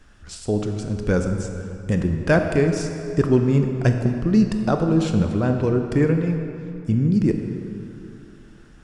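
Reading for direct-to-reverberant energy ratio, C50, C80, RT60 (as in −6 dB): 4.5 dB, 5.5 dB, 6.0 dB, 2.9 s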